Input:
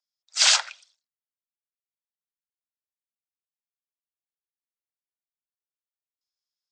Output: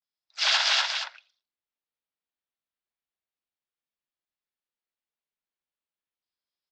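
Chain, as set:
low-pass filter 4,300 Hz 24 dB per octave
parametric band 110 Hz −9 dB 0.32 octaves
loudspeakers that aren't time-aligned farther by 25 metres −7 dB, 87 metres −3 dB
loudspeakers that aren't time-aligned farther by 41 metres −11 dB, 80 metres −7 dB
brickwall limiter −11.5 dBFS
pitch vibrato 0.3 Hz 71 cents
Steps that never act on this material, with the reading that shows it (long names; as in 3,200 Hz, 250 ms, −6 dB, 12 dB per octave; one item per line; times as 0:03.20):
parametric band 110 Hz: nothing at its input below 450 Hz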